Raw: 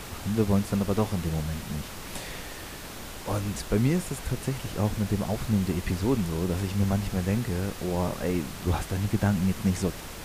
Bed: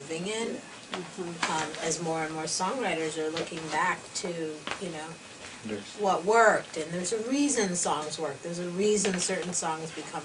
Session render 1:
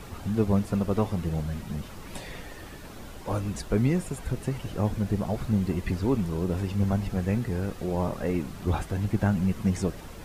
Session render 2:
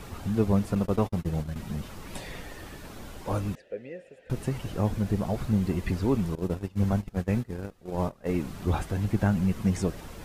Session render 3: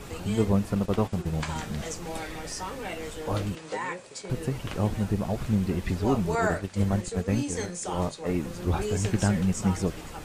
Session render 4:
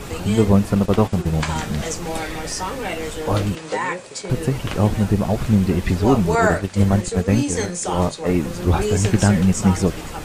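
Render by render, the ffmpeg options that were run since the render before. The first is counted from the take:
-af "afftdn=nr=9:nf=-40"
-filter_complex "[0:a]asettb=1/sr,asplit=3[a][b][c];[a]atrim=end=0.754[d];[b]atrim=start=0.75:end=1.56,asetpts=PTS-STARTPTS,afade=t=in:d=0.004:c=qsin,afade=t=out:st=0.806:d=0.004:c=qsin,agate=range=-45dB:threshold=-31dB:ratio=16:release=100:detection=peak[e];[c]atrim=start=1.556[f];[d][e]acrossfade=d=0.004:c1=hsin:c2=qsin[g];[g][f]acrossfade=d=0.004:c1=qsin:c2=hsin,asettb=1/sr,asplit=3[h][i][j];[h]atrim=end=3.554[k];[i]atrim=start=3.55:end=4.3,asetpts=PTS-STARTPTS,afade=t=in:d=0.004:c=qsin,afade=t=out:st=0.746:d=0.004:c=qsin,asplit=3[l][m][n];[l]bandpass=f=530:t=q:w=8,volume=0dB[o];[m]bandpass=f=1.84k:t=q:w=8,volume=-6dB[p];[n]bandpass=f=2.48k:t=q:w=8,volume=-9dB[q];[o][p][q]amix=inputs=3:normalize=0[r];[j]atrim=start=4.296[s];[k][r]acrossfade=d=0.004:c1=hsin:c2=qsin[t];[t][s]acrossfade=d=0.004:c1=qsin:c2=hsin,asettb=1/sr,asplit=3[u][v][w];[u]atrim=end=6.354[x];[v]atrim=start=6.35:end=8.29,asetpts=PTS-STARTPTS,afade=t=in:d=0.004:c=qsin,afade=t=out:st=1.936:d=0.004:c=qsin,agate=range=-21dB:threshold=-28dB:ratio=16:release=100:detection=peak[y];[w]atrim=start=8.286[z];[x][y]acrossfade=d=0.004:c1=hsin:c2=qsin[aa];[aa][z]acrossfade=d=0.004:c1=qsin:c2=hsin"
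-filter_complex "[1:a]volume=-6.5dB[a];[0:a][a]amix=inputs=2:normalize=0"
-af "volume=9dB,alimiter=limit=-3dB:level=0:latency=1"

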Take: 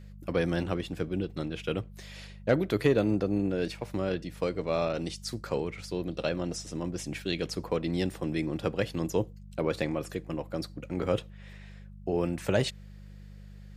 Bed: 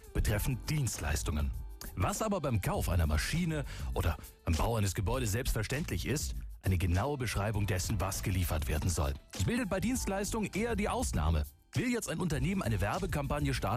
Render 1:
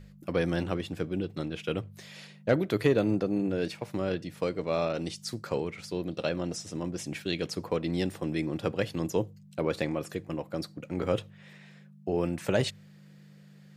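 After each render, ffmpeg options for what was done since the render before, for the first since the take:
-af "bandreject=f=50:t=h:w=4,bandreject=f=100:t=h:w=4"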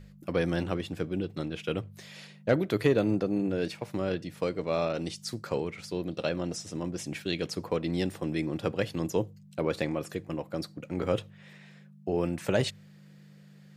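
-af anull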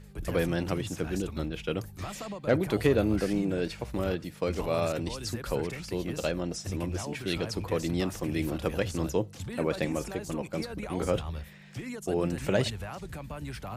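-filter_complex "[1:a]volume=-6.5dB[a];[0:a][a]amix=inputs=2:normalize=0"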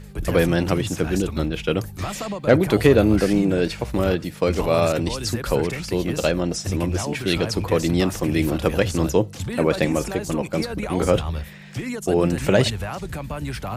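-af "volume=9.5dB,alimiter=limit=-3dB:level=0:latency=1"

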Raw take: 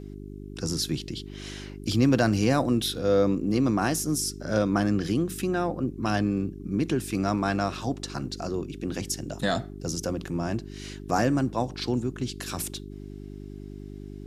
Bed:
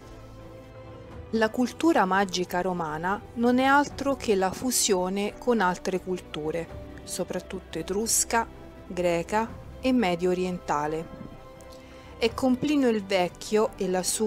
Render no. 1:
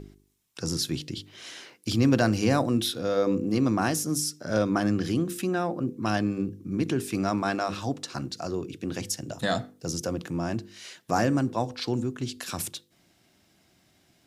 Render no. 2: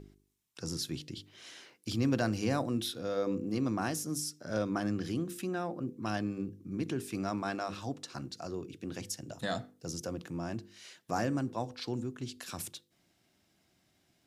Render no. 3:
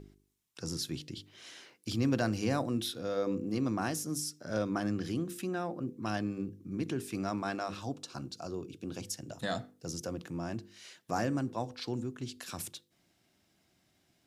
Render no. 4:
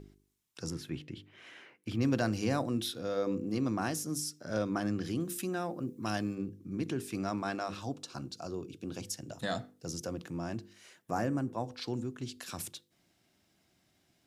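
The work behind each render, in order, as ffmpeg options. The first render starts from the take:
-af "bandreject=f=50:t=h:w=4,bandreject=f=100:t=h:w=4,bandreject=f=150:t=h:w=4,bandreject=f=200:t=h:w=4,bandreject=f=250:t=h:w=4,bandreject=f=300:t=h:w=4,bandreject=f=350:t=h:w=4,bandreject=f=400:t=h:w=4,bandreject=f=450:t=h:w=4,bandreject=f=500:t=h:w=4"
-af "volume=-8dB"
-filter_complex "[0:a]asettb=1/sr,asplit=3[a][b][c];[a]atrim=end=7.824[d];[b]atrim=start=7.82:end=9.08,asetpts=PTS-STARTPTS,afade=t=in:d=0.004:c=qsin,afade=t=out:st=1.256:d=0.004:c=qsin,equalizer=f=1.9k:w=5.3:g=-12.5[e];[c]atrim=start=9.076[f];[d][e]acrossfade=d=0.004:c1=hsin:c2=qsin[g];[g][f]acrossfade=d=0.004:c1=qsin:c2=hsin"
-filter_complex "[0:a]asettb=1/sr,asplit=3[a][b][c];[a]atrim=end=0.704[d];[b]atrim=start=0.7:end=2.01,asetpts=PTS-STARTPTS,afade=t=in:d=0.004:c=qsin,afade=t=out:st=1.306:d=0.004:c=qsin,highshelf=f=3.3k:t=q:w=1.5:g=-11[e];[c]atrim=start=2.006[f];[d][e]acrossfade=d=0.004:c1=hsin:c2=qsin[g];[g][f]acrossfade=d=0.004:c1=qsin:c2=hsin,asettb=1/sr,asplit=3[h][i][j];[h]atrim=end=5.204[k];[i]atrim=start=5.2:end=6.35,asetpts=PTS-STARTPTS,afade=t=in:d=0.004:c=qsin,afade=t=out:st=1.146:d=0.004:c=qsin,highshelf=f=6.6k:g=10[l];[j]atrim=start=6.346[m];[k][l]acrossfade=d=0.004:c1=hsin:c2=qsin[n];[n][m]acrossfade=d=0.004:c1=qsin:c2=hsin,asettb=1/sr,asplit=3[o][p][q];[o]atrim=end=10.734[r];[p]atrim=start=10.73:end=11.68,asetpts=PTS-STARTPTS,afade=t=in:d=0.004:c=qsin,afade=t=out:st=0.946:d=0.004:c=qsin,equalizer=f=4.2k:t=o:w=1.5:g=-8.5[s];[q]atrim=start=11.676[t];[r][s]acrossfade=d=0.004:c1=hsin:c2=qsin[u];[u][t]acrossfade=d=0.004:c1=qsin:c2=hsin"

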